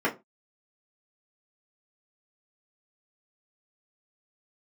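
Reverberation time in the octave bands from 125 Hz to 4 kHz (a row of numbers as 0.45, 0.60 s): 0.30, 0.25, 0.25, 0.25, 0.20, 0.15 s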